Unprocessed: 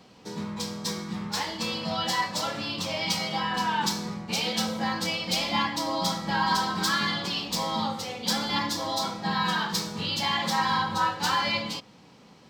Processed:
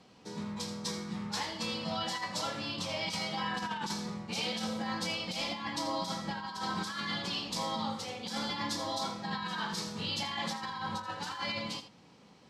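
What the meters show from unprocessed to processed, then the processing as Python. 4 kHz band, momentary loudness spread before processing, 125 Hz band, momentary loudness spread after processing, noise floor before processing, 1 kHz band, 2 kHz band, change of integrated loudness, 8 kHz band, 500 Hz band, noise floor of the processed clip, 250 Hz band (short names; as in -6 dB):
-7.5 dB, 7 LU, -7.0 dB, 4 LU, -53 dBFS, -9.5 dB, -8.5 dB, -8.0 dB, -8.0 dB, -6.0 dB, -58 dBFS, -6.5 dB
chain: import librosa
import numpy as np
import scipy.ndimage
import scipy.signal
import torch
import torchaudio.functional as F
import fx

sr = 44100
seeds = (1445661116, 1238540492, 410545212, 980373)

y = scipy.signal.sosfilt(scipy.signal.butter(6, 12000.0, 'lowpass', fs=sr, output='sos'), x)
y = fx.over_compress(y, sr, threshold_db=-28.0, ratio=-0.5)
y = y + 10.0 ** (-12.0 / 20.0) * np.pad(y, (int(82 * sr / 1000.0), 0))[:len(y)]
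y = y * 10.0 ** (-7.0 / 20.0)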